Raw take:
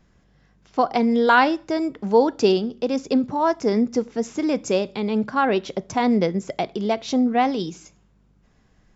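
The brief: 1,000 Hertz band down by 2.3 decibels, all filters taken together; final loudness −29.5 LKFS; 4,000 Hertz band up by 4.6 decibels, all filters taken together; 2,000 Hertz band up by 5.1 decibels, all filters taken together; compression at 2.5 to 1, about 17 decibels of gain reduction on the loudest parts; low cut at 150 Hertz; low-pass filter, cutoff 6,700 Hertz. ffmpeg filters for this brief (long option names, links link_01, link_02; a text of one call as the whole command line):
ffmpeg -i in.wav -af "highpass=150,lowpass=6700,equalizer=frequency=1000:width_type=o:gain=-5.5,equalizer=frequency=2000:width_type=o:gain=9,equalizer=frequency=4000:width_type=o:gain=3.5,acompressor=threshold=-38dB:ratio=2.5,volume=6dB" out.wav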